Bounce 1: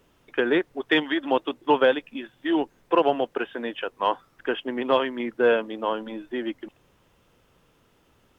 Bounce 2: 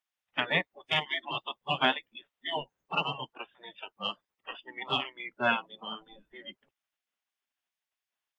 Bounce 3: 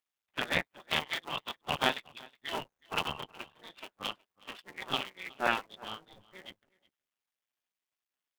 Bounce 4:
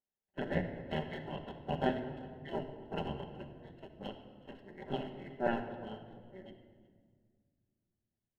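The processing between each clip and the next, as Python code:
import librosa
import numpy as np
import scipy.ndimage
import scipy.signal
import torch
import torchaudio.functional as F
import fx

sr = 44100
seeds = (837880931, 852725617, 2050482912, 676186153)

y1 = fx.noise_reduce_blind(x, sr, reduce_db=25)
y1 = fx.spec_gate(y1, sr, threshold_db=-15, keep='weak')
y1 = F.gain(torch.from_numpy(y1), 4.0).numpy()
y2 = fx.cycle_switch(y1, sr, every=2, mode='muted')
y2 = y2 + 10.0 ** (-23.5 / 20.0) * np.pad(y2, (int(368 * sr / 1000.0), 0))[:len(y2)]
y3 = np.convolve(y2, np.full(37, 1.0 / 37))[:len(y2)]
y3 = fx.room_shoebox(y3, sr, seeds[0], volume_m3=2900.0, walls='mixed', distance_m=1.2)
y3 = F.gain(torch.from_numpy(y3), 3.5).numpy()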